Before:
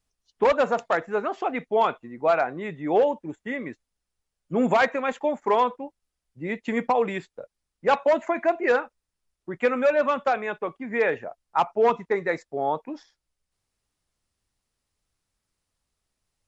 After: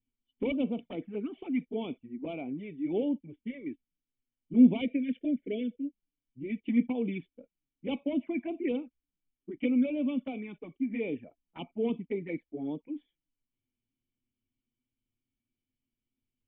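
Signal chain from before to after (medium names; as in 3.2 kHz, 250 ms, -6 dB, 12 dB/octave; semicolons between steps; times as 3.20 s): spectral selection erased 4.81–6.58 s, 680–1400 Hz; touch-sensitive flanger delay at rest 8.3 ms, full sweep at -19.5 dBFS; cascade formant filter i; trim +7.5 dB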